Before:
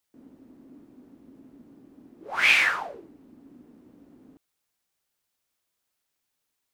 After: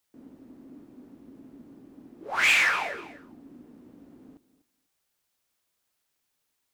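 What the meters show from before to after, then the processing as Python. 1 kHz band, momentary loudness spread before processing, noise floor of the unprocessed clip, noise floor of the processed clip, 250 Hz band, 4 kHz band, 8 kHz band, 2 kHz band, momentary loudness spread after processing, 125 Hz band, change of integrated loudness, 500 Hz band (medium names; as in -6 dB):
+1.0 dB, 17 LU, -80 dBFS, -78 dBFS, +2.0 dB, -1.0 dB, +4.0 dB, -1.0 dB, 16 LU, no reading, -1.5 dB, +1.5 dB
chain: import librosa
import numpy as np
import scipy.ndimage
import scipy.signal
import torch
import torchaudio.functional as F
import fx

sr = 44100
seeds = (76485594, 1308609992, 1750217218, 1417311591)

p1 = x + fx.echo_feedback(x, sr, ms=246, feedback_pct=17, wet_db=-16.5, dry=0)
p2 = 10.0 ** (-17.5 / 20.0) * np.tanh(p1 / 10.0 ** (-17.5 / 20.0))
y = F.gain(torch.from_numpy(p2), 2.0).numpy()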